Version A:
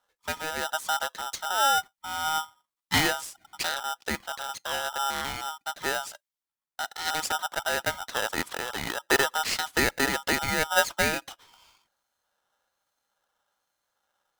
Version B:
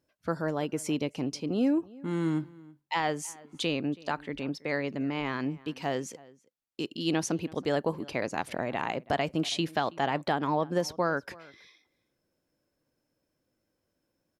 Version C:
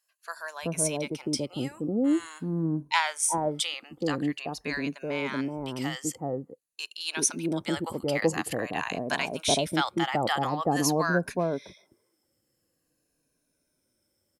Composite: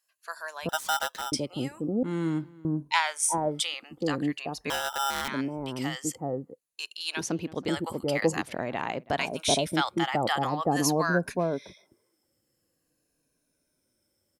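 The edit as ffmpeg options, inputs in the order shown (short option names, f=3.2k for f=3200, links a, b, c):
-filter_complex "[0:a]asplit=2[a][b];[1:a]asplit=3[c][d][e];[2:a]asplit=6[f][g][h][i][j][k];[f]atrim=end=0.692[l];[a]atrim=start=0.688:end=1.322[m];[g]atrim=start=1.318:end=2.032[n];[c]atrim=start=2.028:end=2.652[o];[h]atrim=start=2.648:end=4.702[p];[b]atrim=start=4.698:end=5.282[q];[i]atrim=start=5.278:end=7.212[r];[d]atrim=start=7.208:end=7.682[s];[j]atrim=start=7.678:end=8.422[t];[e]atrim=start=8.418:end=9.182[u];[k]atrim=start=9.178[v];[l][m]acrossfade=d=0.004:c1=hsin:c2=hsin[w];[w][n]acrossfade=d=0.004:c1=hsin:c2=hsin[x];[x][o]acrossfade=d=0.004:c1=hsin:c2=hsin[y];[y][p]acrossfade=d=0.004:c1=hsin:c2=hsin[z];[z][q]acrossfade=d=0.004:c1=hsin:c2=hsin[aa];[aa][r]acrossfade=d=0.004:c1=hsin:c2=hsin[ab];[ab][s]acrossfade=d=0.004:c1=hsin:c2=hsin[ac];[ac][t]acrossfade=d=0.004:c1=hsin:c2=hsin[ad];[ad][u]acrossfade=d=0.004:c1=hsin:c2=hsin[ae];[ae][v]acrossfade=d=0.004:c1=hsin:c2=hsin"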